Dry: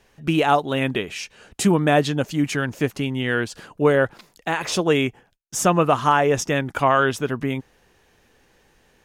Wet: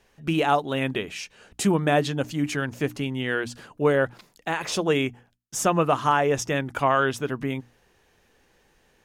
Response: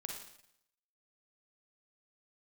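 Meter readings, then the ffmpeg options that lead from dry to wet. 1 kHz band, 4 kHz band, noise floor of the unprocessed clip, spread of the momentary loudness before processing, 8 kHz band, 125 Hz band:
-3.5 dB, -3.5 dB, -60 dBFS, 10 LU, -3.5 dB, -4.0 dB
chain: -af "bandreject=f=60:t=h:w=6,bandreject=f=120:t=h:w=6,bandreject=f=180:t=h:w=6,bandreject=f=240:t=h:w=6,bandreject=f=300:t=h:w=6,volume=0.668"

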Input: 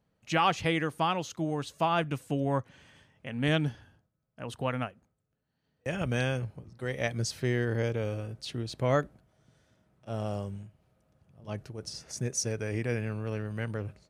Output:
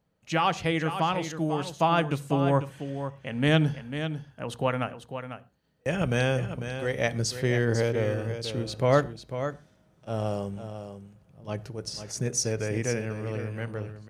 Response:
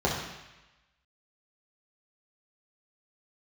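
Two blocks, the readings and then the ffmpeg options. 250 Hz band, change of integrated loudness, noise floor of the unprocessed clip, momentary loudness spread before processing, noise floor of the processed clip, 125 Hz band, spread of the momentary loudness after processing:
+4.0 dB, +3.5 dB, -79 dBFS, 12 LU, -64 dBFS, +4.0 dB, 13 LU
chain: -filter_complex "[0:a]dynaudnorm=f=280:g=11:m=1.58,aecho=1:1:497:0.335,asplit=2[s0][s1];[1:a]atrim=start_sample=2205,afade=t=out:st=0.18:d=0.01,atrim=end_sample=8379[s2];[s1][s2]afir=irnorm=-1:irlink=0,volume=0.0398[s3];[s0][s3]amix=inputs=2:normalize=0"

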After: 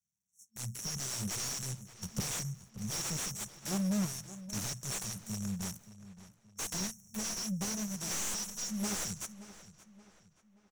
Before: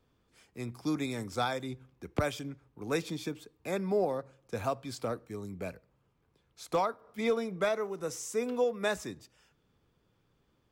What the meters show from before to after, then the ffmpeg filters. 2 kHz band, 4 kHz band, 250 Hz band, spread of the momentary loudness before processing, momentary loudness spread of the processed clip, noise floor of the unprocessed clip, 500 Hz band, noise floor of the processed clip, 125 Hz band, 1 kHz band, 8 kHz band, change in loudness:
-6.0 dB, +4.5 dB, -1.0 dB, 13 LU, 15 LU, -73 dBFS, -17.0 dB, -71 dBFS, +1.5 dB, -11.0 dB, +12.0 dB, -2.0 dB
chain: -filter_complex "[0:a]agate=range=0.0631:threshold=0.00126:ratio=16:detection=peak,aeval=exprs='max(val(0),0)':c=same,tiltshelf=f=700:g=-8.5,dynaudnorm=f=150:g=13:m=1.58,afftfilt=real='re*(1-between(b*sr/4096,220,5500))':imag='im*(1-between(b*sr/4096,220,5500))':win_size=4096:overlap=0.75,asplit=2[s0][s1];[s1]highpass=f=720:p=1,volume=126,asoftclip=type=tanh:threshold=0.2[s2];[s0][s2]amix=inputs=2:normalize=0,lowpass=f=2400:p=1,volume=0.501,asplit=2[s3][s4];[s4]adelay=576,lowpass=f=4500:p=1,volume=0.178,asplit=2[s5][s6];[s6]adelay=576,lowpass=f=4500:p=1,volume=0.43,asplit=2[s7][s8];[s8]adelay=576,lowpass=f=4500:p=1,volume=0.43,asplit=2[s9][s10];[s10]adelay=576,lowpass=f=4500:p=1,volume=0.43[s11];[s5][s7][s9][s11]amix=inputs=4:normalize=0[s12];[s3][s12]amix=inputs=2:normalize=0,volume=0.447"

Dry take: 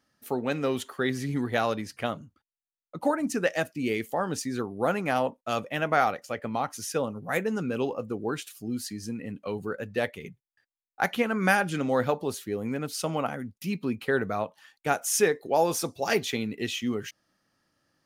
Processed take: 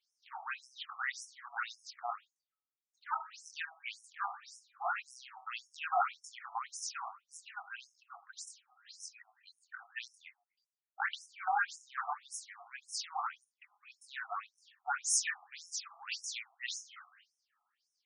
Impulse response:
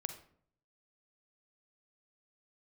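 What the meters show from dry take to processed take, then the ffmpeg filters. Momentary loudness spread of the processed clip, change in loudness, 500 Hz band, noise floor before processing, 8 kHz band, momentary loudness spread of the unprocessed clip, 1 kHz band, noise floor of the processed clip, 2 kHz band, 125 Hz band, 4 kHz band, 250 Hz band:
19 LU, -10.5 dB, -25.0 dB, under -85 dBFS, -4.0 dB, 10 LU, -8.0 dB, under -85 dBFS, -8.5 dB, under -40 dB, -7.5 dB, under -40 dB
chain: -filter_complex "[0:a]aeval=exprs='clip(val(0),-1,0.112)':c=same,asplit=2[s0][s1];[1:a]atrim=start_sample=2205,afade=t=out:st=0.43:d=0.01,atrim=end_sample=19404,adelay=24[s2];[s1][s2]afir=irnorm=-1:irlink=0,volume=0.794[s3];[s0][s3]amix=inputs=2:normalize=0,afftfilt=real='re*between(b*sr/1024,920*pow(7500/920,0.5+0.5*sin(2*PI*1.8*pts/sr))/1.41,920*pow(7500/920,0.5+0.5*sin(2*PI*1.8*pts/sr))*1.41)':imag='im*between(b*sr/1024,920*pow(7500/920,0.5+0.5*sin(2*PI*1.8*pts/sr))/1.41,920*pow(7500/920,0.5+0.5*sin(2*PI*1.8*pts/sr))*1.41)':win_size=1024:overlap=0.75,volume=0.668"

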